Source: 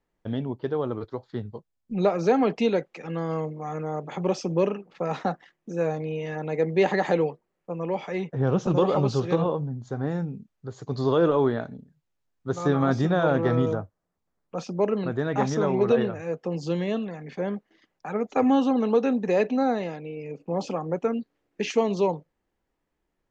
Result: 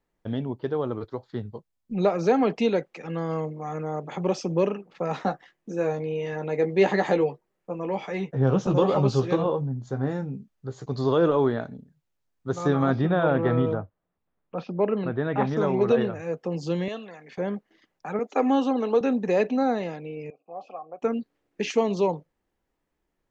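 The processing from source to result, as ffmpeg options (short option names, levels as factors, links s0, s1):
-filter_complex "[0:a]asettb=1/sr,asplit=3[s0][s1][s2];[s0]atrim=end=5.214[s3];[s1]atrim=start=5.21:end=10.86,asetpts=PTS-STARTPTS,afade=t=in:d=0.004:c=qsin,afade=t=out:st=5.646:d=0.004:c=qsin,asplit=2[s4][s5];[s5]adelay=15,volume=0.398[s6];[s4][s6]amix=inputs=2:normalize=0,atrim=end_sample=249165[s7];[s2]atrim=start=10.856[s8];[s3][s7]acrossfade=d=0.004:c1=hsin:c2=qsin[s9];[s9][s8]acrossfade=d=0.004:c1=qsin:c2=hsin,asettb=1/sr,asplit=3[s10][s11][s12];[s10]atrim=end=12.914[s13];[s11]atrim=start=12.91:end=15.57,asetpts=PTS-STARTPTS,afade=t=in:d=0.004:c=qsin,afade=t=out:st=2.656:d=0.004:c=qsin,lowpass=f=3600:w=0.5412,lowpass=f=3600:w=1.3066[s14];[s12]atrim=start=15.566[s15];[s13][s14]acrossfade=d=0.004:c1=hsin:c2=qsin[s16];[s16][s15]acrossfade=d=0.004:c1=qsin:c2=hsin,asettb=1/sr,asplit=3[s17][s18][s19];[s17]atrim=end=16.884[s20];[s18]atrim=start=16.88:end=17.38,asetpts=PTS-STARTPTS,afade=t=in:d=0.004:c=qsin,afade=t=out:st=0.496:d=0.004:c=qsin,highpass=f=830:p=1[s21];[s19]atrim=start=17.376[s22];[s20][s21]acrossfade=d=0.004:c1=hsin:c2=qsin[s23];[s23][s22]acrossfade=d=0.004:c1=qsin:c2=hsin,asettb=1/sr,asplit=3[s24][s25][s26];[s24]atrim=end=18.194[s27];[s25]atrim=start=18.19:end=19.01,asetpts=PTS-STARTPTS,afade=t=in:d=0.004:c=qsin,afade=t=out:st=0.816:d=0.004:c=qsin,highpass=f=250:w=0.5412,highpass=f=250:w=1.3066[s28];[s26]atrim=start=19.006[s29];[s27][s28]acrossfade=d=0.004:c1=hsin:c2=qsin[s30];[s30][s29]acrossfade=d=0.004:c1=qsin:c2=hsin,asettb=1/sr,asplit=3[s31][s32][s33];[s31]atrim=end=20.304[s34];[s32]atrim=start=20.3:end=21.02,asetpts=PTS-STARTPTS,afade=t=in:d=0.004:c=qsin,afade=t=out:st=0.716:d=0.004:c=qsin,asplit=3[s35][s36][s37];[s35]bandpass=f=730:t=q:w=8,volume=1[s38];[s36]bandpass=f=1090:t=q:w=8,volume=0.501[s39];[s37]bandpass=f=2440:t=q:w=8,volume=0.355[s40];[s38][s39][s40]amix=inputs=3:normalize=0[s41];[s33]atrim=start=21.016[s42];[s34][s41]acrossfade=d=0.004:c1=hsin:c2=qsin[s43];[s43][s42]acrossfade=d=0.004:c1=qsin:c2=hsin"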